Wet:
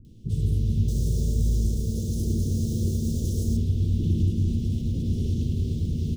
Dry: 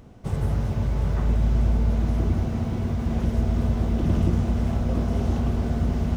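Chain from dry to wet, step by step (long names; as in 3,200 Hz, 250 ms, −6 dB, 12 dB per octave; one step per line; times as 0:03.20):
0:00.83–0:03.52: drawn EQ curve 280 Hz 0 dB, 520 Hz +10 dB, 750 Hz +5 dB, 1,400 Hz −20 dB, 6,500 Hz +15 dB
brickwall limiter −15.5 dBFS, peak gain reduction 4.5 dB
elliptic band-stop filter 380–3,300 Hz, stop band 60 dB
mains-hum notches 60/120/180/240/300/360 Hz
multiband delay without the direct sound lows, highs 50 ms, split 380 Hz
convolution reverb RT60 1.5 s, pre-delay 7 ms, DRR 5 dB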